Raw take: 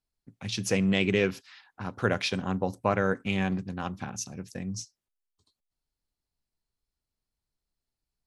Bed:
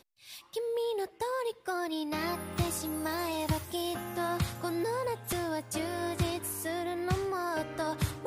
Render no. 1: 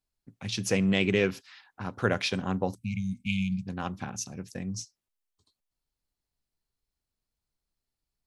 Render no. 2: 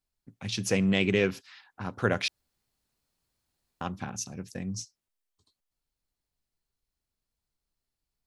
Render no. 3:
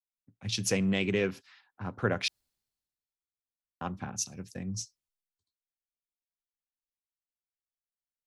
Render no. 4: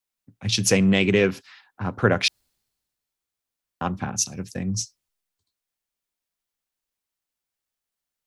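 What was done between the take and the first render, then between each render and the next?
2.75–3.67 s: brick-wall FIR band-stop 250–2100 Hz
2.28–3.81 s: room tone
compression 2:1, threshold -31 dBFS, peak gain reduction 6.5 dB; three bands expanded up and down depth 70%
trim +9.5 dB

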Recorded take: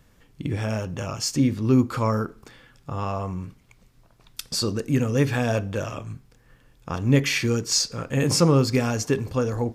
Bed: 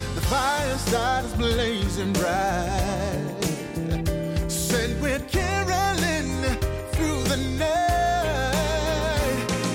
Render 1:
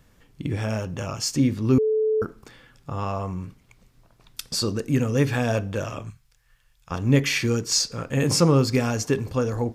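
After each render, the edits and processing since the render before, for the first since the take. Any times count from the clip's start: 1.78–2.22 s: bleep 435 Hz -18.5 dBFS; 6.10–6.91 s: amplifier tone stack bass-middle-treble 10-0-10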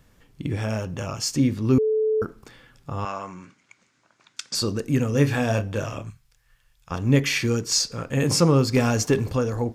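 3.05–4.55 s: cabinet simulation 290–7900 Hz, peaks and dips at 450 Hz -8 dB, 700 Hz -4 dB, 1.5 kHz +7 dB, 2.2 kHz +5 dB, 6.7 kHz +6 dB; 5.11–6.02 s: doubling 28 ms -8.5 dB; 8.76–9.37 s: waveshaping leveller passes 1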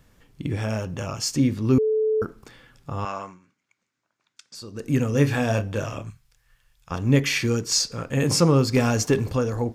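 3.21–4.90 s: dip -14.5 dB, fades 0.18 s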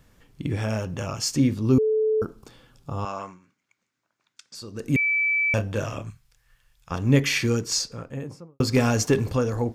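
1.54–3.18 s: peaking EQ 1.9 kHz -9.5 dB 0.75 oct; 4.96–5.54 s: bleep 2.31 kHz -19.5 dBFS; 7.51–8.60 s: studio fade out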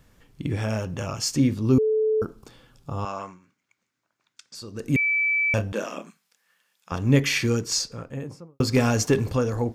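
5.72–6.92 s: brick-wall FIR high-pass 170 Hz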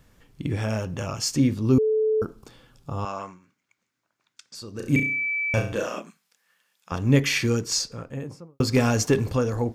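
4.72–6.00 s: flutter echo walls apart 5.9 m, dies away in 0.43 s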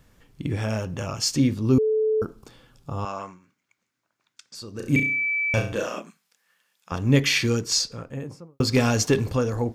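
dynamic bell 3.8 kHz, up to +5 dB, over -40 dBFS, Q 1.3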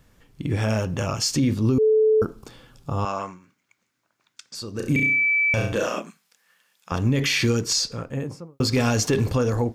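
peak limiter -17.5 dBFS, peak gain reduction 11 dB; level rider gain up to 4.5 dB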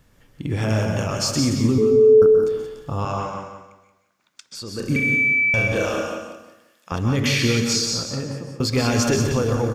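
on a send: feedback delay 177 ms, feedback 29%, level -7.5 dB; on the sum: plate-style reverb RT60 0.57 s, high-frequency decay 0.75×, pre-delay 115 ms, DRR 4 dB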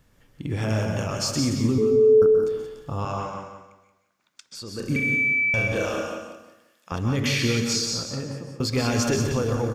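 trim -3.5 dB

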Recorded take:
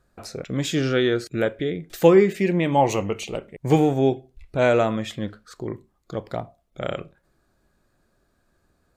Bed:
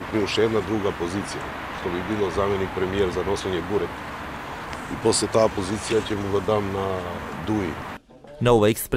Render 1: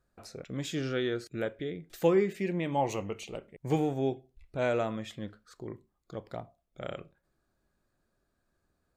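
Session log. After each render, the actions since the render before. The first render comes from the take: trim -10.5 dB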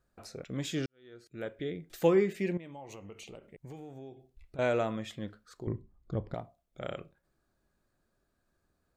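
0.86–1.66 s: fade in quadratic; 2.57–4.59 s: compression, threshold -44 dBFS; 5.67–6.34 s: RIAA curve playback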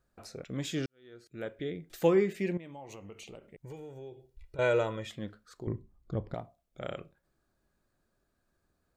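3.65–5.07 s: comb 2.1 ms, depth 64%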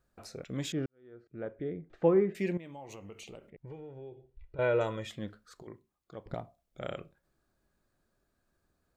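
0.72–2.35 s: low-pass 1.3 kHz; 3.50–4.81 s: distance through air 340 m; 5.62–6.26 s: high-pass 1.1 kHz 6 dB/octave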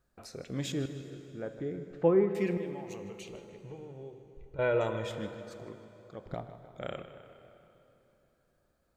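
filtered feedback delay 155 ms, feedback 61%, low-pass 4.7 kHz, level -13 dB; plate-style reverb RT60 3.6 s, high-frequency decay 0.8×, DRR 10.5 dB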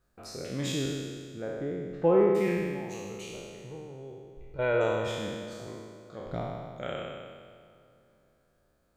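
spectral sustain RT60 1.76 s

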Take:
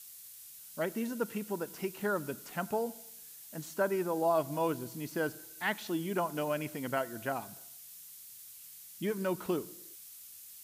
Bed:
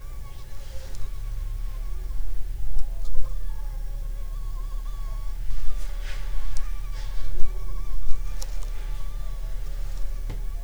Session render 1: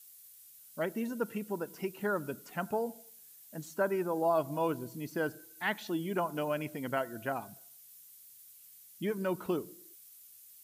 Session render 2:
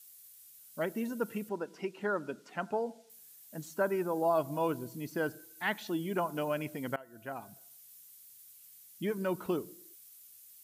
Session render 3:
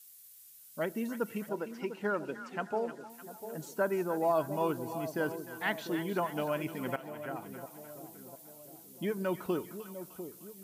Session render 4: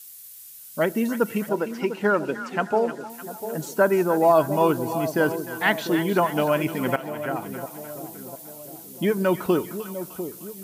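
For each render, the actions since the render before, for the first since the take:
noise reduction 8 dB, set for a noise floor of -51 dBFS
1.49–3.10 s: band-pass 200–5600 Hz; 6.96–7.73 s: fade in, from -21.5 dB
two-band feedback delay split 860 Hz, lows 698 ms, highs 304 ms, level -10.5 dB
trim +11.5 dB

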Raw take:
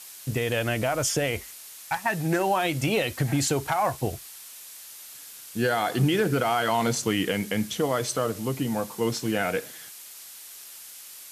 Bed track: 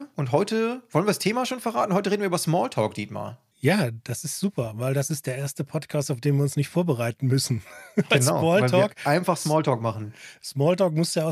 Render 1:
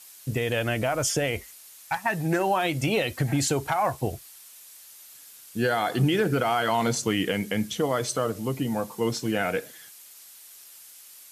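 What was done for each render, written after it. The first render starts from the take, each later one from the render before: noise reduction 6 dB, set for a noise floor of -44 dBFS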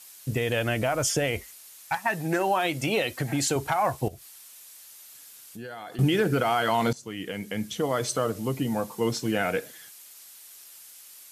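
1.95–3.56 s: high-pass 200 Hz 6 dB/octave; 4.08–5.99 s: compression 2.5:1, threshold -43 dBFS; 6.93–8.06 s: fade in linear, from -18.5 dB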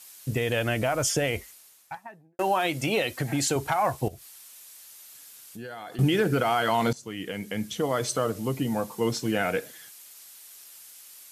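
1.32–2.39 s: studio fade out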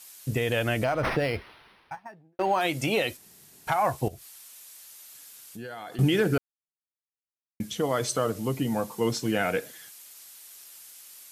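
0.84–2.61 s: decimation joined by straight lines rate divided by 6×; 3.17–3.67 s: room tone; 6.38–7.60 s: mute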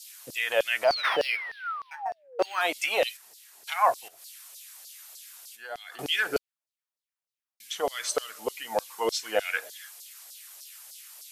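0.87–2.60 s: painted sound fall 330–4900 Hz -38 dBFS; LFO high-pass saw down 3.3 Hz 480–5100 Hz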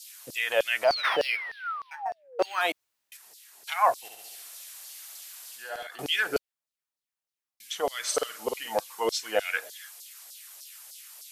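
2.72–3.12 s: room tone; 3.98–5.87 s: flutter echo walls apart 11.7 m, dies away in 1.3 s; 8.02–8.80 s: doubling 50 ms -4 dB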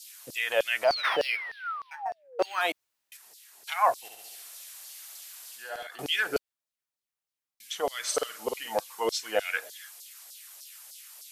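trim -1 dB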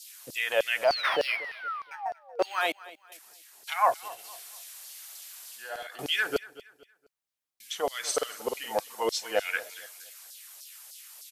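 feedback delay 234 ms, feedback 35%, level -19 dB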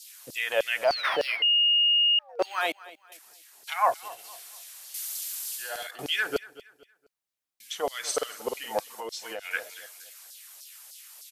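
1.42–2.19 s: bleep 2.85 kHz -18.5 dBFS; 4.94–5.91 s: treble shelf 3.2 kHz +12 dB; 8.85–9.51 s: compression 5:1, threshold -33 dBFS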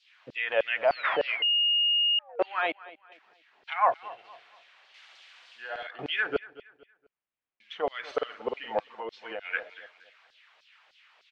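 low-pass 2.9 kHz 24 dB/octave

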